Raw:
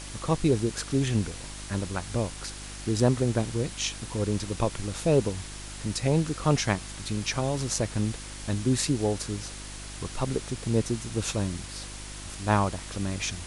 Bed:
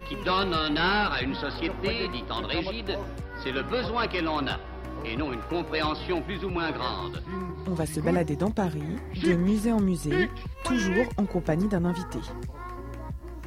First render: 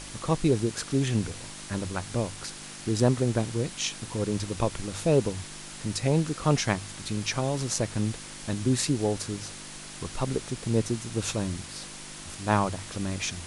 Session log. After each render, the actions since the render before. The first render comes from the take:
hum removal 50 Hz, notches 2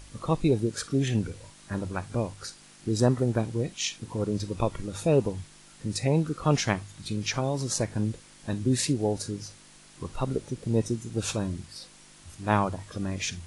noise reduction from a noise print 11 dB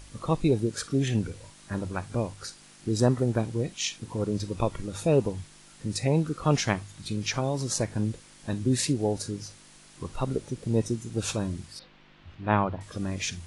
0:11.79–0:12.81: low-pass filter 3,400 Hz 24 dB per octave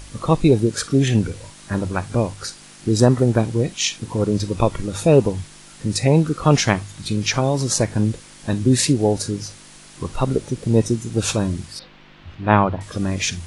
level +9 dB
brickwall limiter −1 dBFS, peak gain reduction 1.5 dB

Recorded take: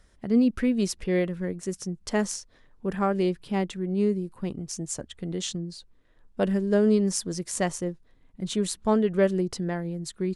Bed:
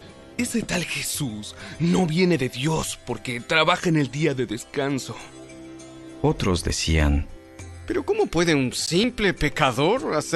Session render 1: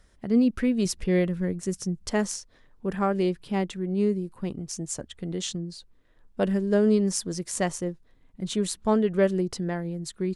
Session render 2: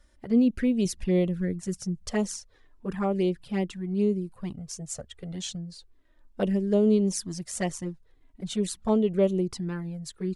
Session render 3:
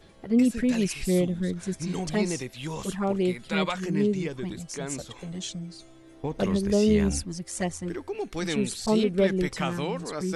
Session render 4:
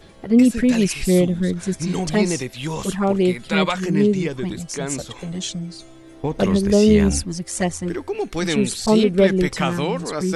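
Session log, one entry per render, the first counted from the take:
0:00.85–0:02.10: bass and treble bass +5 dB, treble +2 dB
flanger swept by the level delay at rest 3.5 ms, full sweep at −20 dBFS
mix in bed −11 dB
level +7.5 dB

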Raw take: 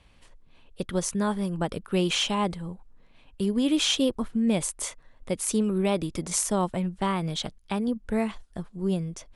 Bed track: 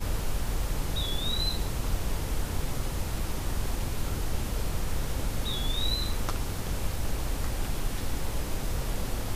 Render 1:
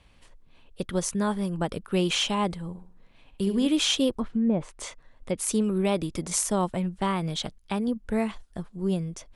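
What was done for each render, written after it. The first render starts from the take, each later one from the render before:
0:02.68–0:03.67: flutter between parallel walls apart 11.5 metres, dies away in 0.45 s
0:04.18–0:05.38: treble cut that deepens with the level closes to 970 Hz, closed at −19.5 dBFS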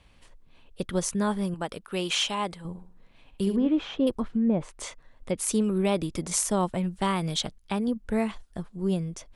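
0:01.54–0:02.65: low-shelf EQ 370 Hz −10.5 dB
0:03.56–0:04.07: low-pass filter 1,400 Hz
0:06.83–0:07.41: high-shelf EQ 3,700 Hz +6.5 dB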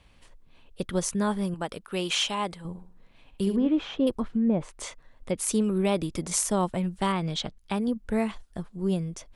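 0:07.12–0:07.57: high-frequency loss of the air 92 metres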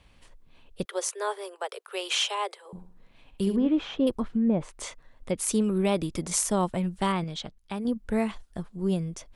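0:00.85–0:02.73: Butterworth high-pass 380 Hz 96 dB per octave
0:07.24–0:07.85: clip gain −5 dB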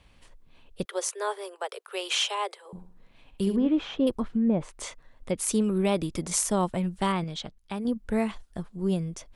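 no processing that can be heard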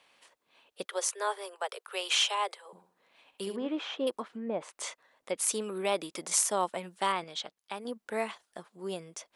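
high-pass filter 530 Hz 12 dB per octave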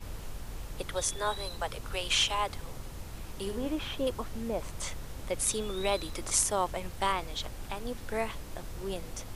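mix in bed track −11 dB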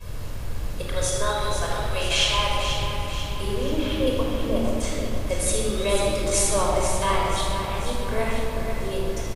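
repeating echo 490 ms, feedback 50%, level −8 dB
rectangular room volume 3,700 cubic metres, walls mixed, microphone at 5.4 metres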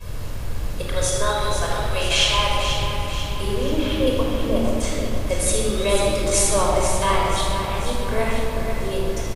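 level +3 dB

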